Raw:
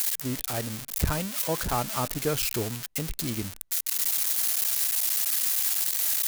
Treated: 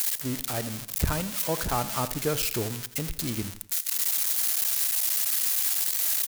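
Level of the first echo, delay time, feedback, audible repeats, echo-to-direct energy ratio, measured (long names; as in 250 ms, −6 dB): −15.0 dB, 83 ms, 42%, 3, −14.0 dB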